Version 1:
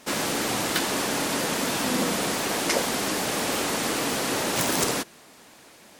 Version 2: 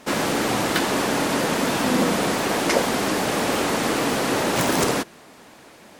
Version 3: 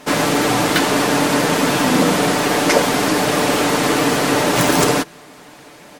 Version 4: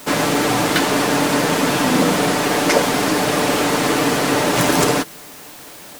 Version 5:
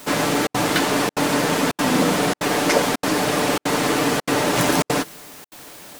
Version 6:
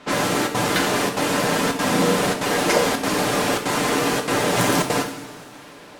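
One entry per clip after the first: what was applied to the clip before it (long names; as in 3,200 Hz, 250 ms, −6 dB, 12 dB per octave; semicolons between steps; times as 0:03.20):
high-shelf EQ 2,900 Hz −8 dB; level +6 dB
comb filter 6.8 ms, depth 46%; level +5 dB
background noise white −39 dBFS; level −1 dB
gate pattern "xxxxxx.xxxxxxx.x" 193 BPM −60 dB; level −2.5 dB
low-pass that shuts in the quiet parts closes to 2,800 Hz, open at −18.5 dBFS; coupled-rooms reverb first 0.57 s, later 4 s, from −18 dB, DRR 3 dB; level −2 dB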